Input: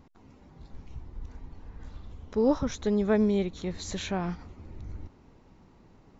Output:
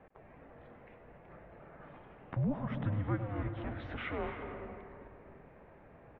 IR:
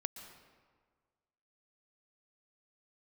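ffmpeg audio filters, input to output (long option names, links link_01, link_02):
-filter_complex "[0:a]asplit=2[link_01][link_02];[link_02]acompressor=threshold=-40dB:ratio=6,volume=2dB[link_03];[link_01][link_03]amix=inputs=2:normalize=0,alimiter=limit=-20dB:level=0:latency=1:release=279,asettb=1/sr,asplit=3[link_04][link_05][link_06];[link_04]atrim=end=3.194[link_07];[link_05]atrim=start=3.19:end=4.19,asetpts=PTS-STARTPTS,afade=type=in:duration=0.004:curve=qsin,afade=type=out:start_time=0.996:duration=0.004:curve=qsin,asoftclip=type=hard:threshold=-29dB[link_08];[link_06]atrim=start=4.186[link_09];[link_07][link_08]acrossfade=duration=0.004:curve1=hsin:curve2=qsin[link_10];[link_10][link_09]acrossfade=duration=0.004:curve1=qsin:curve2=hsin,aecho=1:1:102:0.188[link_11];[1:a]atrim=start_sample=2205,asetrate=24255,aresample=44100[link_12];[link_11][link_12]afir=irnorm=-1:irlink=0,highpass=frequency=420:width_type=q:width=0.5412,highpass=frequency=420:width_type=q:width=1.307,lowpass=frequency=2700:width_type=q:width=0.5176,lowpass=frequency=2700:width_type=q:width=0.7071,lowpass=frequency=2700:width_type=q:width=1.932,afreqshift=-310,volume=-1.5dB"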